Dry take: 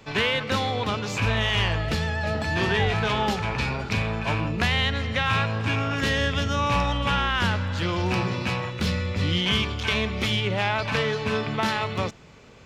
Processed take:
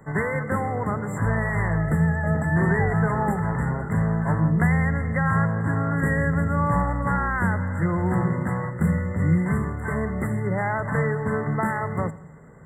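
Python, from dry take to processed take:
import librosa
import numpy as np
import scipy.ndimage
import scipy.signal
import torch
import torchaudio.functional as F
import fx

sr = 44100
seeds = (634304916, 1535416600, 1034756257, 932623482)

y = fx.brickwall_bandstop(x, sr, low_hz=2100.0, high_hz=7200.0)
y = fx.peak_eq(y, sr, hz=160.0, db=13.5, octaves=0.3)
y = fx.echo_feedback(y, sr, ms=85, feedback_pct=48, wet_db=-19.0)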